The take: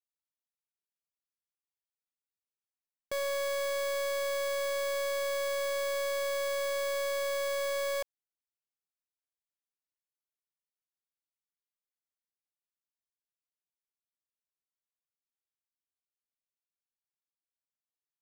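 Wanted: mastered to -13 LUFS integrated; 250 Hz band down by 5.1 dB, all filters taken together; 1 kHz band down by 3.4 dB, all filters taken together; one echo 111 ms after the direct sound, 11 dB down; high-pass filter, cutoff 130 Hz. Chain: high-pass 130 Hz; peaking EQ 250 Hz -6.5 dB; peaking EQ 1 kHz -3.5 dB; delay 111 ms -11 dB; trim +19 dB

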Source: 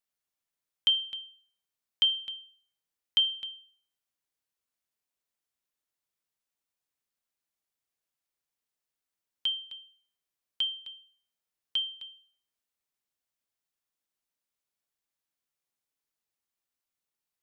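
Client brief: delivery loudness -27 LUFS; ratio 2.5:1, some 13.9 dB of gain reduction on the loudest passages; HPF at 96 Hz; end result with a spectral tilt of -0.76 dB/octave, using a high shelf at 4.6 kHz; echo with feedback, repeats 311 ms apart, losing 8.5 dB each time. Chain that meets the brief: high-pass 96 Hz; treble shelf 4.6 kHz +3 dB; compression 2.5:1, threshold -41 dBFS; feedback delay 311 ms, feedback 38%, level -8.5 dB; trim +14 dB

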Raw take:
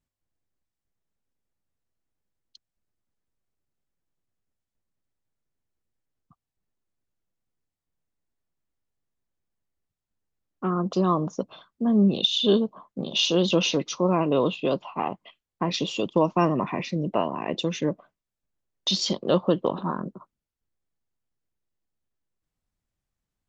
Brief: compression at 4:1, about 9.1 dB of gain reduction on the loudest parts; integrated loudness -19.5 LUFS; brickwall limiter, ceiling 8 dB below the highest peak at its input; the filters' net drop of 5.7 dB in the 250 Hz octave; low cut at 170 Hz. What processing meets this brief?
high-pass 170 Hz; peaking EQ 250 Hz -6.5 dB; compression 4:1, threshold -28 dBFS; trim +15 dB; peak limiter -7.5 dBFS

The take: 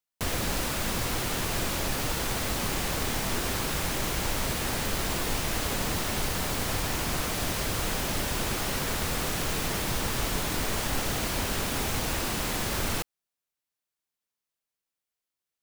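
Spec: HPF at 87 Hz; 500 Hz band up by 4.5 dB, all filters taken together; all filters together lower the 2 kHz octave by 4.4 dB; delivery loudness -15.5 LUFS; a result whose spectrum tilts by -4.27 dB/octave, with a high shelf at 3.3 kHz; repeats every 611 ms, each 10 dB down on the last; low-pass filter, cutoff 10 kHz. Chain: high-pass 87 Hz; low-pass 10 kHz; peaking EQ 500 Hz +6 dB; peaking EQ 2 kHz -4 dB; treble shelf 3.3 kHz -6 dB; feedback delay 611 ms, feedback 32%, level -10 dB; trim +15.5 dB

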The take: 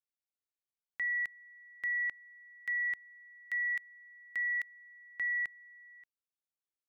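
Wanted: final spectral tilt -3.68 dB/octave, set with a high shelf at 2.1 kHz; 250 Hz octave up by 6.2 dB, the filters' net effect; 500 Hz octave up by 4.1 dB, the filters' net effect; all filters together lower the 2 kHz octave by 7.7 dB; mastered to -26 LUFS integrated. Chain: peaking EQ 250 Hz +7 dB; peaking EQ 500 Hz +4 dB; peaking EQ 2 kHz -5 dB; treble shelf 2.1 kHz -6.5 dB; trim +16 dB

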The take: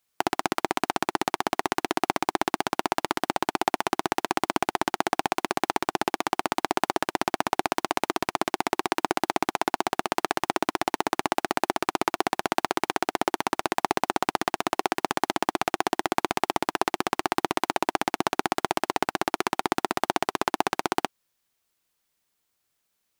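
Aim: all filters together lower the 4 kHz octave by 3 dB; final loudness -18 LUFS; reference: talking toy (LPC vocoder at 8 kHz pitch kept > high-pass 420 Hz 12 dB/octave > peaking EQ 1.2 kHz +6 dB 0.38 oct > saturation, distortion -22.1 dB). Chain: peaking EQ 4 kHz -4 dB; LPC vocoder at 8 kHz pitch kept; high-pass 420 Hz 12 dB/octave; peaking EQ 1.2 kHz +6 dB 0.38 oct; saturation -15.5 dBFS; trim +13 dB

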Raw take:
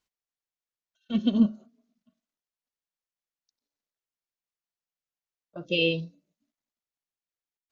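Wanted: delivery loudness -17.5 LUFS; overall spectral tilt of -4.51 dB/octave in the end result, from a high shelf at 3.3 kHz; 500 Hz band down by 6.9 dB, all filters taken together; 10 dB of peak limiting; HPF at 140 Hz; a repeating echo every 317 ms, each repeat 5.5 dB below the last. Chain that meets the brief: high-pass 140 Hz; peaking EQ 500 Hz -7.5 dB; treble shelf 3.3 kHz -5.5 dB; peak limiter -22.5 dBFS; feedback delay 317 ms, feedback 53%, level -5.5 dB; trim +18 dB

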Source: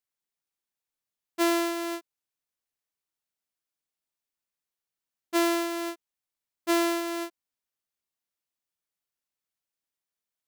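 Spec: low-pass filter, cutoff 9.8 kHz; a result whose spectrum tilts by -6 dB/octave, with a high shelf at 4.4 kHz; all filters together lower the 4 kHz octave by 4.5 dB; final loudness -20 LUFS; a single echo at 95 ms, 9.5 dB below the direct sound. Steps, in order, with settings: low-pass 9.8 kHz; peaking EQ 4 kHz -8.5 dB; treble shelf 4.4 kHz +5 dB; delay 95 ms -9.5 dB; trim +8.5 dB

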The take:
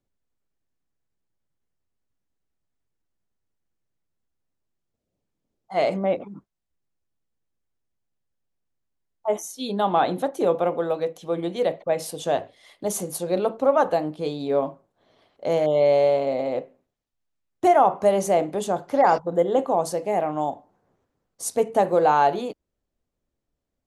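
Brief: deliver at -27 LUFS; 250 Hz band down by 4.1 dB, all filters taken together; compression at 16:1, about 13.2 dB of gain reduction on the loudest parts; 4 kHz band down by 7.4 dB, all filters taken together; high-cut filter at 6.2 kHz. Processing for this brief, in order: low-pass 6.2 kHz; peaking EQ 250 Hz -6 dB; peaking EQ 4 kHz -9 dB; compression 16:1, threshold -27 dBFS; trim +6.5 dB

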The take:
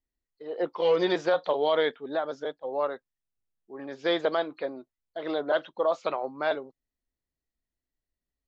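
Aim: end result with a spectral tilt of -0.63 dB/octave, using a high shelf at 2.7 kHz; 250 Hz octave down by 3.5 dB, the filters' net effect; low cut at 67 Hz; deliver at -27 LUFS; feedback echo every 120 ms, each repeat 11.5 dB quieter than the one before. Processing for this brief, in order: high-pass 67 Hz; peaking EQ 250 Hz -6 dB; treble shelf 2.7 kHz +6 dB; feedback delay 120 ms, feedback 27%, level -11.5 dB; trim +1.5 dB

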